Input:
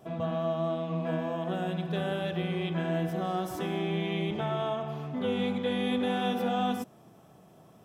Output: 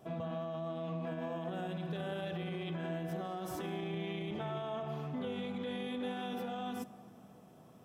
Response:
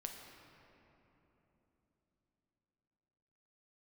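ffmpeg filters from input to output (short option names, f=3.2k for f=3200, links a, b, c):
-filter_complex "[0:a]alimiter=level_in=4dB:limit=-24dB:level=0:latency=1:release=52,volume=-4dB,asplit=2[a][b];[1:a]atrim=start_sample=2205[c];[b][c]afir=irnorm=-1:irlink=0,volume=-7dB[d];[a][d]amix=inputs=2:normalize=0,volume=-5.5dB"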